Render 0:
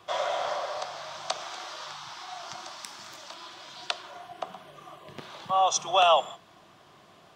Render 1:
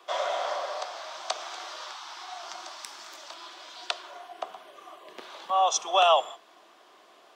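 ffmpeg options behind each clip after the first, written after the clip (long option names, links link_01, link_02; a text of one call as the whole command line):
ffmpeg -i in.wav -af "highpass=frequency=310:width=0.5412,highpass=frequency=310:width=1.3066" out.wav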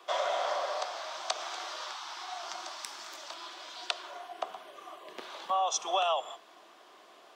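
ffmpeg -i in.wav -af "acompressor=threshold=-26dB:ratio=6" out.wav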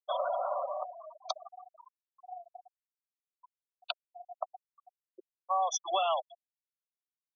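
ffmpeg -i in.wav -af "asoftclip=type=tanh:threshold=-13.5dB,afftfilt=real='re*gte(hypot(re,im),0.0562)':imag='im*gte(hypot(re,im),0.0562)':win_size=1024:overlap=0.75" out.wav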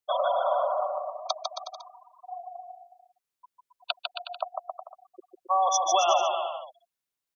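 ffmpeg -i in.wav -af "aecho=1:1:150|270|366|442.8|504.2:0.631|0.398|0.251|0.158|0.1,volume=5.5dB" out.wav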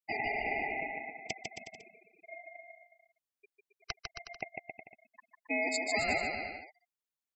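ffmpeg -i in.wav -af "aeval=exprs='val(0)*sin(2*PI*1400*n/s)':channel_layout=same,volume=-6dB" out.wav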